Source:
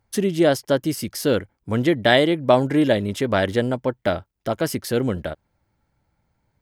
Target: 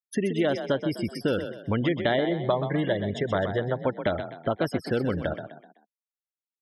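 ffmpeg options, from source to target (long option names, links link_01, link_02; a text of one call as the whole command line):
ffmpeg -i in.wav -filter_complex "[0:a]acrossover=split=1100|2800[link_01][link_02][link_03];[link_01]acompressor=threshold=-27dB:ratio=4[link_04];[link_02]acompressor=threshold=-38dB:ratio=4[link_05];[link_03]acompressor=threshold=-42dB:ratio=4[link_06];[link_04][link_05][link_06]amix=inputs=3:normalize=0,asettb=1/sr,asplit=3[link_07][link_08][link_09];[link_07]atrim=end=2.294[link_10];[link_08]atrim=start=2.29:end=3.78,asetpts=PTS-STARTPTS,afade=type=in:duration=0.004:curve=qsin,afade=type=out:start_time=1.486:duration=0.004:curve=qsin,equalizer=frequency=160:width_type=o:width=0.33:gain=6,equalizer=frequency=250:width_type=o:width=0.33:gain=-11,equalizer=frequency=2500:width_type=o:width=0.33:gain=-7[link_11];[link_09]atrim=start=3.776[link_12];[link_10][link_11]acrossfade=duration=0.004:curve1=hsin:curve2=qsin[link_13];[link_13][link_12]acrossfade=duration=0.004:curve1=qsin:curve2=hsin,afftfilt=real='re*gte(hypot(re,im),0.02)':imag='im*gte(hypot(re,im),0.02)':win_size=1024:overlap=0.75,asplit=5[link_14][link_15][link_16][link_17][link_18];[link_15]adelay=127,afreqshift=35,volume=-9dB[link_19];[link_16]adelay=254,afreqshift=70,volume=-17.2dB[link_20];[link_17]adelay=381,afreqshift=105,volume=-25.4dB[link_21];[link_18]adelay=508,afreqshift=140,volume=-33.5dB[link_22];[link_14][link_19][link_20][link_21][link_22]amix=inputs=5:normalize=0,volume=2.5dB" out.wav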